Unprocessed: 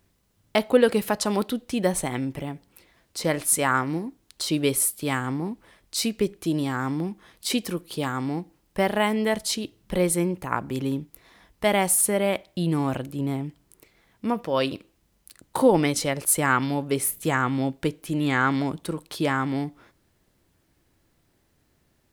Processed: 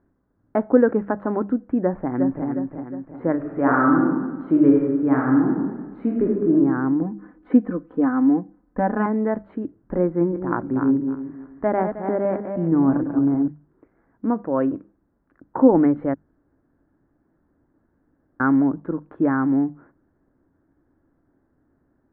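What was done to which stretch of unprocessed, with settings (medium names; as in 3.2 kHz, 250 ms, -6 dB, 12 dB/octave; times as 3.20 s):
1.82–2.47 s: echo throw 360 ms, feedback 50%, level -5.5 dB
3.36–6.51 s: reverb throw, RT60 1.3 s, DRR -2 dB
7.01–9.06 s: comb 4 ms, depth 83%
10.05–13.48 s: backward echo that repeats 157 ms, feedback 45%, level -6.5 dB
16.14–18.40 s: room tone
whole clip: elliptic low-pass 1.6 kHz, stop band 70 dB; peaking EQ 280 Hz +10 dB 0.58 oct; hum notches 50/100/150/200 Hz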